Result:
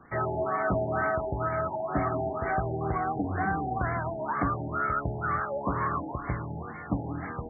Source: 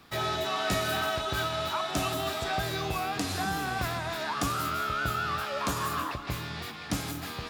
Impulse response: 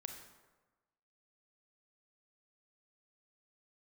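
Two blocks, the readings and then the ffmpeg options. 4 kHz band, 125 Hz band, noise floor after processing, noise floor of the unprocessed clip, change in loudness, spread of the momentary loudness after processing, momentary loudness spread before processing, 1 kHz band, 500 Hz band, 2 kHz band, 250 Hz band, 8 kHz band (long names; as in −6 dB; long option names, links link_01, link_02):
below −40 dB, +3.5 dB, −39 dBFS, −41 dBFS, +0.5 dB, 6 LU, 6 LU, +1.5 dB, +3.0 dB, −1.5 dB, +3.0 dB, below −40 dB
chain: -filter_complex "[0:a]asplit=2[link_01][link_02];[1:a]atrim=start_sample=2205[link_03];[link_02][link_03]afir=irnorm=-1:irlink=0,volume=-3.5dB[link_04];[link_01][link_04]amix=inputs=2:normalize=0,afftfilt=real='re*lt(b*sr/1024,890*pow(2300/890,0.5+0.5*sin(2*PI*2.1*pts/sr)))':imag='im*lt(b*sr/1024,890*pow(2300/890,0.5+0.5*sin(2*PI*2.1*pts/sr)))':win_size=1024:overlap=0.75"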